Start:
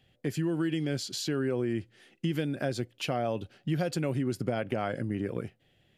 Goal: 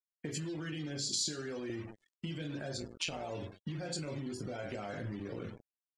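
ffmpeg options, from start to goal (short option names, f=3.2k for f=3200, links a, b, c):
-filter_complex "[0:a]asplit=2[a][b];[b]aecho=0:1:20|44|72.8|107.4|148.8:0.631|0.398|0.251|0.158|0.1[c];[a][c]amix=inputs=2:normalize=0,asettb=1/sr,asplit=3[d][e][f];[d]atrim=end=1.034[g];[e]atrim=start=1.03:end=1.7,asetpts=PTS-STARTPTS,afade=t=in:d=0.004:c=qsin,afade=t=out:st=0.666:d=0.004:c=qsin,acrossover=split=680|4700[h][i][j];[h]acompressor=threshold=-39dB:ratio=4[k];[i]acompressor=threshold=-46dB:ratio=4[l];[j]acompressor=threshold=-38dB:ratio=4[m];[k][l][m]amix=inputs=3:normalize=0[n];[f]atrim=start=1.696[o];[g][n]acrossfade=d=0.004:c1=hsin:c2=qsin[p];[p][o]acrossfade=d=0.004:c1=qsin:c2=hsin,asettb=1/sr,asplit=3[q][r][s];[q]atrim=end=2.774[t];[r]atrim=start=2.77:end=3.31,asetpts=PTS-STARTPTS,afade=t=in:d=0.004:c=qsin,afade=t=out:st=0.536:d=0.004:c=qsin,tremolo=f=170:d=0.75[u];[s]atrim=start=3.306[v];[t][u]acrossfade=d=0.004:c1=hsin:c2=qsin[w];[w][v]acrossfade=d=0.004:c1=qsin:c2=hsin,asettb=1/sr,asplit=3[x][y][z];[x]atrim=end=4.184[aa];[y]atrim=start=4.18:end=5.13,asetpts=PTS-STARTPTS,afade=t=in:d=0.004:c=qsin,afade=t=out:st=0.946:d=0.004:c=qsin,asubboost=boost=8:cutoff=70[ab];[z]atrim=start=5.126[ac];[aa][ab]acrossfade=d=0.004:c1=hsin:c2=qsin[ad];[ad][ac]acrossfade=d=0.004:c1=qsin:c2=hsin,alimiter=level_in=1.5dB:limit=-24dB:level=0:latency=1:release=58,volume=-1.5dB,acompressor=threshold=-37dB:ratio=8,acrusher=bits=7:mix=0:aa=0.000001,afftdn=nr=34:nf=-51,lowpass=f=8.4k:w=0.5412,lowpass=f=8.4k:w=1.3066,aemphasis=mode=production:type=75fm,volume=1dB"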